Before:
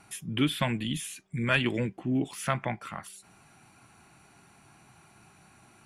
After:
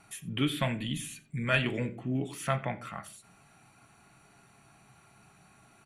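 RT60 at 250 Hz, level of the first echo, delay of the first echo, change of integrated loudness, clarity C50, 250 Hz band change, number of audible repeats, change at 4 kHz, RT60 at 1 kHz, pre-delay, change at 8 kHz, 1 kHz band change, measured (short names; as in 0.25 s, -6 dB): 0.70 s, -21.5 dB, 87 ms, -2.0 dB, 16.0 dB, -3.5 dB, 1, -2.5 dB, 0.35 s, 4 ms, -3.0 dB, -2.0 dB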